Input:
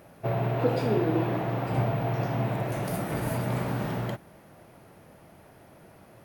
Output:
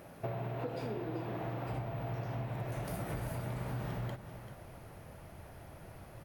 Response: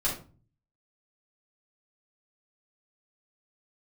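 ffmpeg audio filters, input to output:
-filter_complex "[0:a]asubboost=boost=4.5:cutoff=100,acompressor=threshold=-35dB:ratio=12,asplit=2[link_01][link_02];[link_02]aecho=0:1:389:0.266[link_03];[link_01][link_03]amix=inputs=2:normalize=0"

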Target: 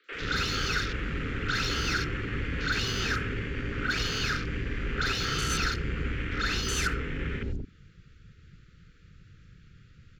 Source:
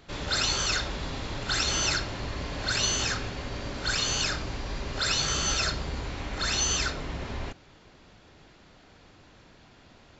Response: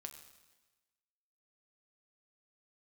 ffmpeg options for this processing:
-filter_complex "[0:a]equalizer=frequency=1600:width_type=o:width=2.3:gain=3,asplit=2[link_01][link_02];[link_02]acompressor=threshold=-44dB:ratio=4,volume=0dB[link_03];[link_01][link_03]amix=inputs=2:normalize=0,asuperstop=centerf=790:order=12:qfactor=1.1,acrossover=split=500|1100[link_04][link_05][link_06];[link_06]asoftclip=type=tanh:threshold=-29.5dB[link_07];[link_04][link_05][link_07]amix=inputs=3:normalize=0,acrossover=split=380|4300[link_08][link_09][link_10];[link_10]adelay=40[link_11];[link_08]adelay=120[link_12];[link_12][link_09][link_11]amix=inputs=3:normalize=0,afwtdn=0.0112,lowshelf=frequency=140:gain=-3,volume=3dB"

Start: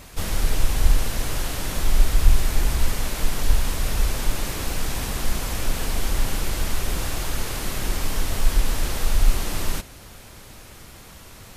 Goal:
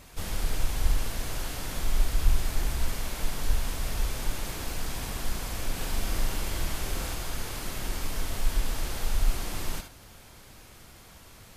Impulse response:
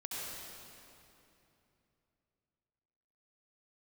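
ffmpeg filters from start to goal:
-filter_complex "[0:a]asettb=1/sr,asplit=3[link_01][link_02][link_03];[link_01]atrim=end=5.724[link_04];[link_02]atrim=start=5.72:end=7.15,asetpts=PTS-STARTPTS,afade=type=in:duration=0.004:curve=qsin,afade=type=out:start_time=1.426:duration=0.004:curve=qsin,asplit=2[link_05][link_06];[link_06]adelay=44,volume=-4dB[link_07];[link_05][link_07]amix=inputs=2:normalize=0,atrim=end_sample=63063[link_08];[link_03]atrim=start=7.146[link_09];[link_04][link_08]acrossfade=duration=0.004:curve1=hsin:curve2=qsin[link_10];[link_10][link_09]acrossfade=duration=0.004:curve1=qsin:curve2=hsin[link_11];[1:a]atrim=start_sample=2205,atrim=end_sample=3087,asetrate=41895,aresample=44100[link_12];[link_11][link_12]afir=irnorm=-1:irlink=0,volume=-2dB"

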